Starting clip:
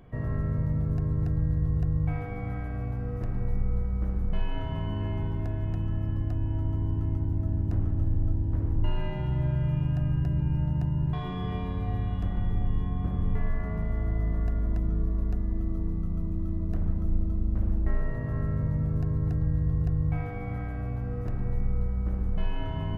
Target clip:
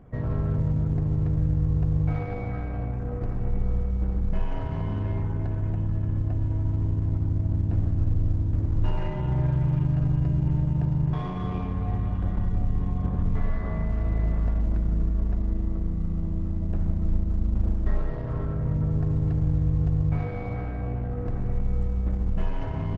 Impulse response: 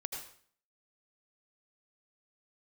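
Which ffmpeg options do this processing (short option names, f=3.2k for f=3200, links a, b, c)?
-filter_complex "[0:a]adynamicsmooth=sensitivity=5:basefreq=1.6k,asettb=1/sr,asplit=3[a][b][c];[a]atrim=end=17.724[d];[b]atrim=start=17.72:end=18.69,asetpts=PTS-STARTPTS,afade=t=in:d=0.004:c=qsin,afade=t=out:st=0.966:d=0.004:c=qsin,bandreject=f=50:t=h:w=6,bandreject=f=100:t=h:w=6,bandreject=f=150:t=h:w=6,bandreject=f=200:t=h:w=6,bandreject=f=250:t=h:w=6[e];[c]atrim=start=18.686[f];[d][e]acrossfade=d=0.004:c1=hsin:c2=qsin[g];[g][f]acrossfade=d=0.004:c1=qsin:c2=hsin,asplit=2[h][i];[1:a]atrim=start_sample=2205,lowshelf=f=360:g=-7.5[j];[i][j]afir=irnorm=-1:irlink=0,volume=-1dB[k];[h][k]amix=inputs=2:normalize=0,aresample=22050,aresample=44100" -ar 48000 -c:a libopus -b:a 12k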